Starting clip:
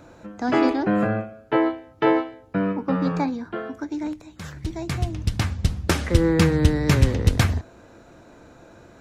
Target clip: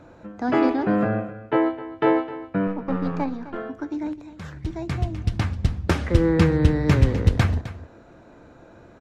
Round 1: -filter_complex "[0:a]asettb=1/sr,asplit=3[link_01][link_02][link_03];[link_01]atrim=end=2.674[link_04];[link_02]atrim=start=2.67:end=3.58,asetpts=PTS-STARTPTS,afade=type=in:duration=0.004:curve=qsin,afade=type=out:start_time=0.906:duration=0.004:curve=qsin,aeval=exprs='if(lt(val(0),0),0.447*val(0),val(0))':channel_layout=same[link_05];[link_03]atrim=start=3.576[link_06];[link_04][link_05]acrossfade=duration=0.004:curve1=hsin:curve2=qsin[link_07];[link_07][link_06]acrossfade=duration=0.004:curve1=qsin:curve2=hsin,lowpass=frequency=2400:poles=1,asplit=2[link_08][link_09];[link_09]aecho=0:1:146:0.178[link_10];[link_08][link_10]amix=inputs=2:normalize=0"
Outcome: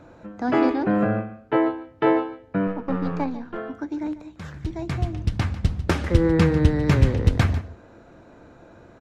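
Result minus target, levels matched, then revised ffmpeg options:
echo 113 ms early
-filter_complex "[0:a]asettb=1/sr,asplit=3[link_01][link_02][link_03];[link_01]atrim=end=2.674[link_04];[link_02]atrim=start=2.67:end=3.58,asetpts=PTS-STARTPTS,afade=type=in:duration=0.004:curve=qsin,afade=type=out:start_time=0.906:duration=0.004:curve=qsin,aeval=exprs='if(lt(val(0),0),0.447*val(0),val(0))':channel_layout=same[link_05];[link_03]atrim=start=3.576[link_06];[link_04][link_05]acrossfade=duration=0.004:curve1=hsin:curve2=qsin[link_07];[link_07][link_06]acrossfade=duration=0.004:curve1=qsin:curve2=hsin,lowpass=frequency=2400:poles=1,asplit=2[link_08][link_09];[link_09]aecho=0:1:259:0.178[link_10];[link_08][link_10]amix=inputs=2:normalize=0"

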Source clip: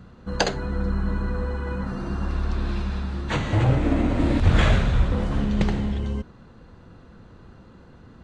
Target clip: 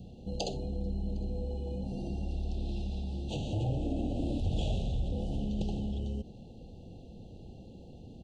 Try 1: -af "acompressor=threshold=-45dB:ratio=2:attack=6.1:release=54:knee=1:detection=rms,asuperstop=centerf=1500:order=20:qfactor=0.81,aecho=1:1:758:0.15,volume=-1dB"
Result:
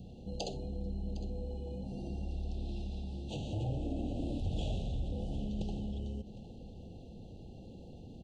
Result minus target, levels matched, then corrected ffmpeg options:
echo-to-direct +12 dB; downward compressor: peak gain reduction +4 dB
-af "acompressor=threshold=-37dB:ratio=2:attack=6.1:release=54:knee=1:detection=rms,asuperstop=centerf=1500:order=20:qfactor=0.81,aecho=1:1:758:0.0376,volume=-1dB"

